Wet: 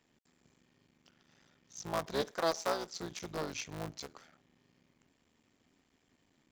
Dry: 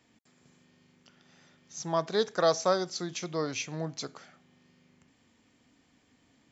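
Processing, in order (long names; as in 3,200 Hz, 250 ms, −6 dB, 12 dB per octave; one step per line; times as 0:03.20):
sub-harmonics by changed cycles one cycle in 3, muted
0:02.31–0:02.94: parametric band 100 Hz −14 dB 1.7 octaves
level −5 dB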